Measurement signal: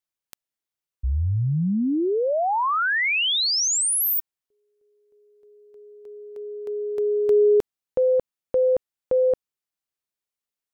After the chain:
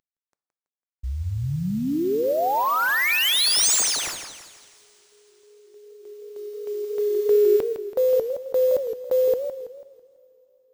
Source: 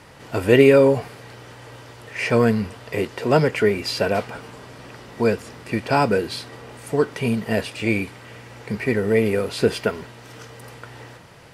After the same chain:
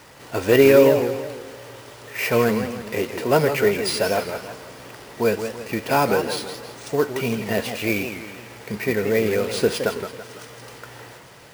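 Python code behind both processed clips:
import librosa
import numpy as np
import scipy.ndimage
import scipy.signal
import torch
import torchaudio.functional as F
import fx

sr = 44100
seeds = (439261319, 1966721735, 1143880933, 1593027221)

y = fx.cvsd(x, sr, bps=64000)
y = fx.bass_treble(y, sr, bass_db=-5, treble_db=3)
y = fx.rev_double_slope(y, sr, seeds[0], early_s=0.51, late_s=4.4, knee_db=-18, drr_db=15.0)
y = np.repeat(y[::3], 3)[:len(y)]
y = fx.echo_warbled(y, sr, ms=165, feedback_pct=43, rate_hz=2.8, cents=205, wet_db=-9.0)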